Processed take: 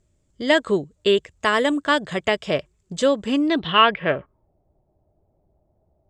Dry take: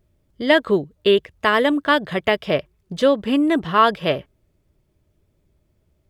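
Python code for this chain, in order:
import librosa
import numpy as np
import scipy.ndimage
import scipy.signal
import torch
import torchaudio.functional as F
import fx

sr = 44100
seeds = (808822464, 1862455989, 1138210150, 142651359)

y = fx.filter_sweep_lowpass(x, sr, from_hz=7500.0, to_hz=750.0, start_s=3.27, end_s=4.51, q=6.4)
y = F.gain(torch.from_numpy(y), -2.5).numpy()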